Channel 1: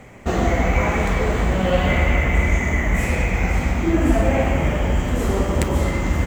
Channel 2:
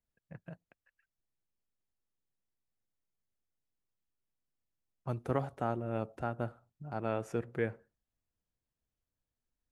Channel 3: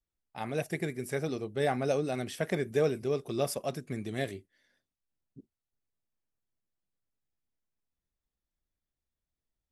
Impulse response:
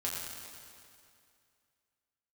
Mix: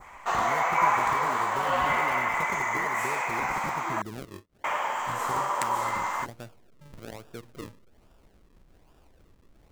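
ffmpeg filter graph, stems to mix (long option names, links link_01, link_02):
-filter_complex "[0:a]highpass=frequency=1000:width_type=q:width=4.2,volume=-4dB,asplit=3[link_01][link_02][link_03];[link_01]atrim=end=4.02,asetpts=PTS-STARTPTS,afade=type=out:start_time=4.016:duration=0.004:curve=hsin[link_04];[link_02]atrim=start=4.02:end=4.64,asetpts=PTS-STARTPTS,volume=0[link_05];[link_03]atrim=start=4.64,asetpts=PTS-STARTPTS,afade=type=in:duration=0.004:curve=hsin[link_06];[link_04][link_05][link_06]concat=n=3:v=0:a=1[link_07];[1:a]volume=-5.5dB[link_08];[2:a]acompressor=mode=upward:threshold=-36dB:ratio=2.5,acompressor=threshold=-32dB:ratio=6,volume=2dB[link_09];[link_08][link_09]amix=inputs=2:normalize=0,acrusher=samples=41:mix=1:aa=0.000001:lfo=1:lforange=41:lforate=1.2,acompressor=threshold=-35dB:ratio=4,volume=0dB[link_10];[link_07][link_10]amix=inputs=2:normalize=0,adynamicequalizer=threshold=0.00891:dfrequency=2800:dqfactor=1.2:tfrequency=2800:tqfactor=1.2:attack=5:release=100:ratio=0.375:range=2.5:mode=cutabove:tftype=bell"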